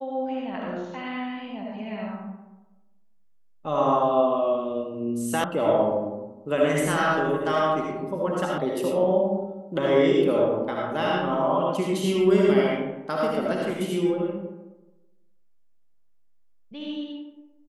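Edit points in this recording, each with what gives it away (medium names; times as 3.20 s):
5.44 s: sound stops dead
8.58 s: sound stops dead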